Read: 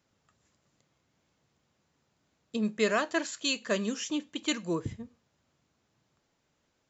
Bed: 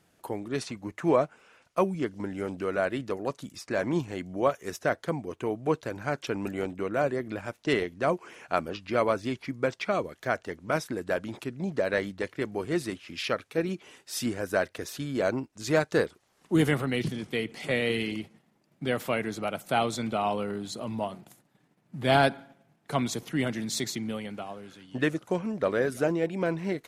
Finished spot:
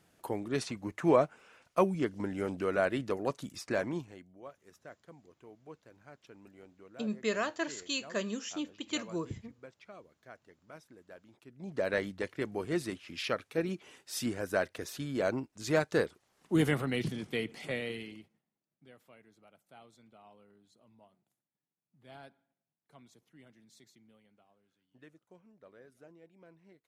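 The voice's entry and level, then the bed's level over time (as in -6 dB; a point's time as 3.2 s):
4.45 s, -5.0 dB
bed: 3.72 s -1.5 dB
4.4 s -23.5 dB
11.38 s -23.5 dB
11.83 s -4 dB
17.49 s -4 dB
18.99 s -30 dB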